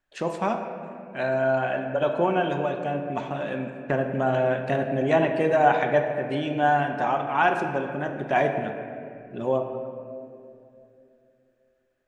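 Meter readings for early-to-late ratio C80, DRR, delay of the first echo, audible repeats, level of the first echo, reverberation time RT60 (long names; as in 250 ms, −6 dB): 7.0 dB, 4.0 dB, no echo audible, no echo audible, no echo audible, 2.7 s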